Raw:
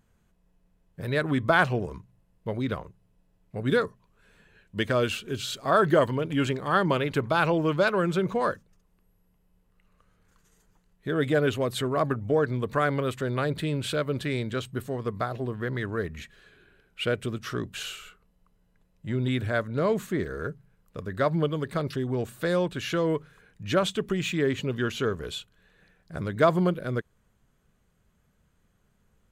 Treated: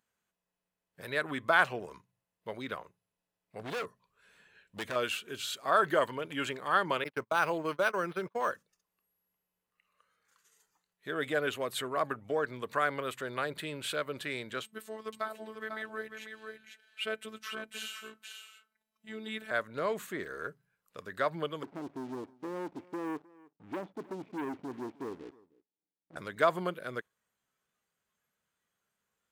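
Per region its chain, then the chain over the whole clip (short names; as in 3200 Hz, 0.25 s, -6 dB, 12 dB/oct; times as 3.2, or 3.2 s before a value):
3.59–4.96 low shelf 210 Hz +6.5 dB + hard clip -26 dBFS
7.04–8.51 gate -29 dBFS, range -35 dB + decimation joined by straight lines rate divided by 6×
14.63–19.51 robotiser 218 Hz + echo 0.496 s -7 dB
21.63–26.16 vocal tract filter u + sample leveller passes 3 + echo 0.31 s -22 dB
whole clip: HPF 1100 Hz 6 dB/oct; spectral noise reduction 7 dB; dynamic EQ 5100 Hz, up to -5 dB, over -51 dBFS, Q 0.91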